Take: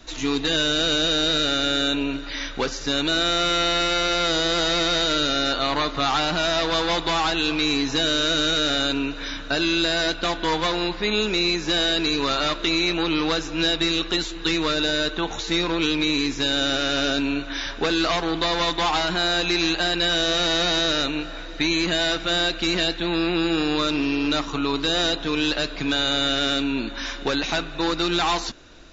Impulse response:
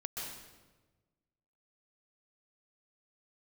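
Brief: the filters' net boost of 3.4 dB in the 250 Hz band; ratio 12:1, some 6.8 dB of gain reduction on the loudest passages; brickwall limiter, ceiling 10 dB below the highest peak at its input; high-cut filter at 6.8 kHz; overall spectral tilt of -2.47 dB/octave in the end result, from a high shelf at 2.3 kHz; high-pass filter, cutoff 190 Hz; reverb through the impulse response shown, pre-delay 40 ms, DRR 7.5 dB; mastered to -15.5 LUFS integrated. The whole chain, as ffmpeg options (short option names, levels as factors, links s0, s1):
-filter_complex "[0:a]highpass=190,lowpass=6800,equalizer=f=250:t=o:g=5.5,highshelf=f=2300:g=6.5,acompressor=threshold=0.0891:ratio=12,alimiter=limit=0.119:level=0:latency=1,asplit=2[s0][s1];[1:a]atrim=start_sample=2205,adelay=40[s2];[s1][s2]afir=irnorm=-1:irlink=0,volume=0.376[s3];[s0][s3]amix=inputs=2:normalize=0,volume=3.35"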